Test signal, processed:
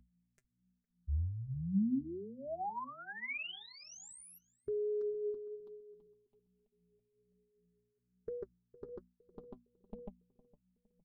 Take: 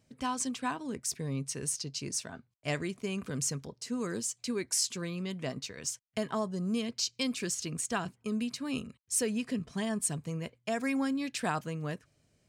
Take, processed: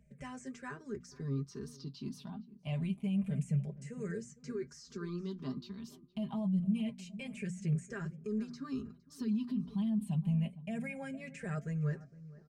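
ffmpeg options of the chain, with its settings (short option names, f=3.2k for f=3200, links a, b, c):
-filter_complex "[0:a]afftfilt=real='re*pow(10,16/40*sin(2*PI*(0.51*log(max(b,1)*sr/1024/100)/log(2)-(-0.27)*(pts-256)/sr)))':imag='im*pow(10,16/40*sin(2*PI*(0.51*log(max(b,1)*sr/1024/100)/log(2)-(-0.27)*(pts-256)/sr)))':win_size=1024:overlap=0.75,aeval=exprs='val(0)+0.001*(sin(2*PI*60*n/s)+sin(2*PI*2*60*n/s)/2+sin(2*PI*3*60*n/s)/3+sin(2*PI*4*60*n/s)/4+sin(2*PI*5*60*n/s)/5)':c=same,lowshelf=f=280:g=4,aecho=1:1:5:0.77,asplit=2[a][b];[b]adelay=460,lowpass=f=910:p=1,volume=-18dB,asplit=2[c][d];[d]adelay=460,lowpass=f=910:p=1,volume=0.39,asplit=2[e][f];[f]adelay=460,lowpass=f=910:p=1,volume=0.39[g];[a][c][e][g]amix=inputs=4:normalize=0,flanger=delay=4.4:depth=3.5:regen=48:speed=1.2:shape=sinusoidal,alimiter=level_in=1dB:limit=-24dB:level=0:latency=1:release=33,volume=-1dB,bass=f=250:g=11,treble=f=4k:g=-6,bandreject=f=60:t=h:w=6,bandreject=f=120:t=h:w=6,bandreject=f=180:t=h:w=6,bandreject=f=240:t=h:w=6,bandreject=f=300:t=h:w=6,acrossover=split=3000[h][i];[i]acompressor=threshold=-44dB:ratio=4:attack=1:release=60[j];[h][j]amix=inputs=2:normalize=0,volume=-8.5dB"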